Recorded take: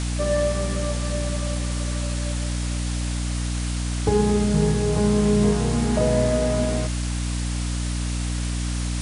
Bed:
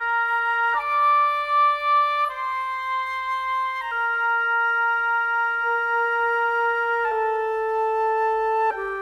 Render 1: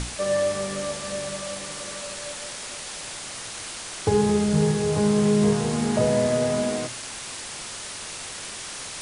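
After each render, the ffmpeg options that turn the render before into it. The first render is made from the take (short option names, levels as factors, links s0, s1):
-af "bandreject=f=60:t=h:w=6,bandreject=f=120:t=h:w=6,bandreject=f=180:t=h:w=6,bandreject=f=240:t=h:w=6,bandreject=f=300:t=h:w=6"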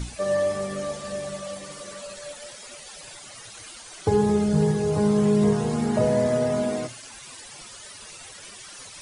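-af "afftdn=nr=14:nf=-36"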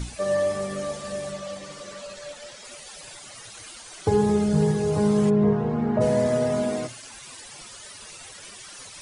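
-filter_complex "[0:a]asettb=1/sr,asplit=3[s0][s1][s2];[s0]atrim=end=1.324[s3];[s1]atrim=start=1.32:end=2.65,asetpts=PTS-STARTPTS,afade=t=in:d=0.004:c=qsin,afade=t=out:st=1.326:d=0.004:c=qsin,lowpass=7200[s4];[s2]atrim=start=2.646[s5];[s3][s4]acrossfade=d=0.004:c1=hsin:c2=qsin[s6];[s6][s5]acrossfade=d=0.004:c1=qsin:c2=hsin,asplit=3[s7][s8][s9];[s7]afade=t=out:st=5.29:d=0.02[s10];[s8]lowpass=1700,afade=t=in:st=5.29:d=0.02,afade=t=out:st=6:d=0.02[s11];[s9]afade=t=in:st=6:d=0.02[s12];[s10][s11][s12]amix=inputs=3:normalize=0"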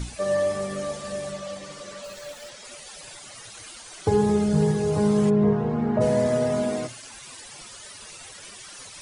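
-filter_complex "[0:a]asplit=3[s0][s1][s2];[s0]afade=t=out:st=2.03:d=0.02[s3];[s1]acrusher=bits=9:dc=4:mix=0:aa=0.000001,afade=t=in:st=2.03:d=0.02,afade=t=out:st=2.48:d=0.02[s4];[s2]afade=t=in:st=2.48:d=0.02[s5];[s3][s4][s5]amix=inputs=3:normalize=0"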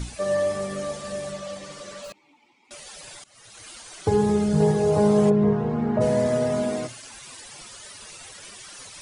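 -filter_complex "[0:a]asettb=1/sr,asplit=3[s0][s1][s2];[s0]atrim=end=2.124[s3];[s1]atrim=start=2.12:end=2.71,asetpts=PTS-STARTPTS,afade=t=in:d=0.004:c=qsin,afade=t=out:st=0.586:d=0.004:c=qsin,asplit=3[s4][s5][s6];[s4]bandpass=f=300:t=q:w=8,volume=1[s7];[s5]bandpass=f=870:t=q:w=8,volume=0.501[s8];[s6]bandpass=f=2240:t=q:w=8,volume=0.355[s9];[s7][s8][s9]amix=inputs=3:normalize=0[s10];[s2]atrim=start=2.706[s11];[s3][s10]acrossfade=d=0.004:c1=hsin:c2=qsin[s12];[s12][s11]acrossfade=d=0.004:c1=qsin:c2=hsin,asettb=1/sr,asplit=3[s13][s14][s15];[s13]atrim=end=4.604[s16];[s14]atrim=start=4.6:end=5.32,asetpts=PTS-STARTPTS,afade=t=in:d=0.004:c=qsin,afade=t=out:st=0.716:d=0.004:c=qsin,equalizer=f=640:t=o:w=1.1:g=8.5[s17];[s15]atrim=start=5.316[s18];[s16][s17]acrossfade=d=0.004:c1=hsin:c2=qsin[s19];[s19][s18]acrossfade=d=0.004:c1=qsin:c2=hsin,asplit=2[s20][s21];[s20]atrim=end=3.24,asetpts=PTS-STARTPTS,afade=t=out:st=3.236:d=0.004:c=hsin:silence=0.0891251[s22];[s21]atrim=start=3.24,asetpts=PTS-STARTPTS,afade=t=in:d=0.49:silence=0.0891251[s23];[s22][s23]concat=n=2:v=0:a=1"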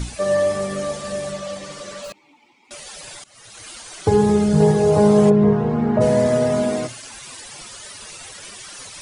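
-af "volume=1.78"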